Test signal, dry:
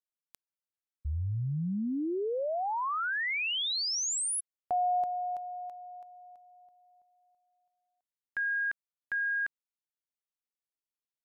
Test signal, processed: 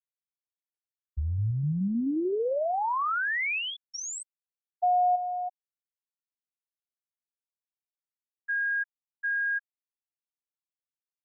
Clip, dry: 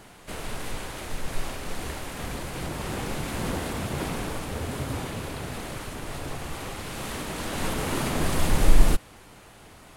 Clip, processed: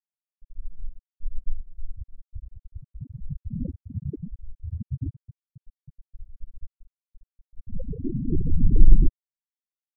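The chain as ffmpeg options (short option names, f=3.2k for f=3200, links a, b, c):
-filter_complex "[0:a]aeval=exprs='0.708*(cos(1*acos(clip(val(0)/0.708,-1,1)))-cos(1*PI/2))+0.0141*(cos(2*acos(clip(val(0)/0.708,-1,1)))-cos(2*PI/2))+0.02*(cos(5*acos(clip(val(0)/0.708,-1,1)))-cos(5*PI/2))':c=same,acrossover=split=4100[a][b];[a]adelay=120[c];[c][b]amix=inputs=2:normalize=0,afftfilt=real='re*gte(hypot(re,im),0.251)':imag='im*gte(hypot(re,im),0.251)':win_size=1024:overlap=0.75,volume=4dB"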